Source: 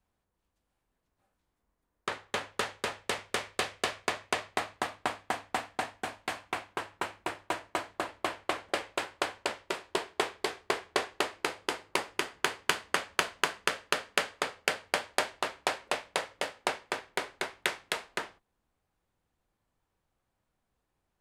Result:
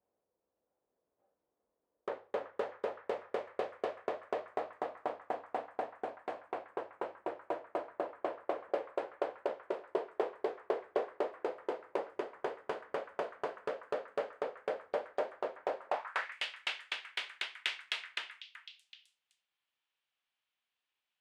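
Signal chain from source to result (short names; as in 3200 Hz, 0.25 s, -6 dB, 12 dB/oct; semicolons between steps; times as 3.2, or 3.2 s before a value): soft clip -20.5 dBFS, distortion -10 dB; delay with a stepping band-pass 0.379 s, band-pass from 1500 Hz, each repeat 1.4 oct, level -9.5 dB; band-pass sweep 510 Hz -> 3000 Hz, 15.79–16.44; gain +5 dB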